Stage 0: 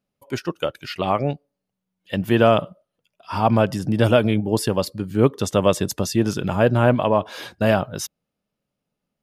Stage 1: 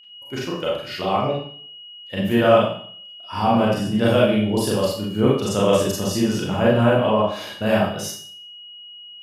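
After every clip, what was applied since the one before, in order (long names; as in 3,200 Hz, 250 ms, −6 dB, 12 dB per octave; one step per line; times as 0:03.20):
steady tone 2,900 Hz −40 dBFS
four-comb reverb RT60 0.54 s, combs from 30 ms, DRR −5.5 dB
level −6 dB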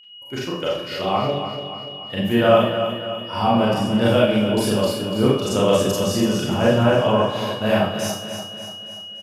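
repeating echo 290 ms, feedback 51%, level −9 dB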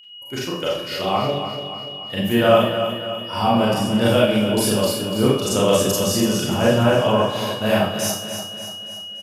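high-shelf EQ 5,500 Hz +9.5 dB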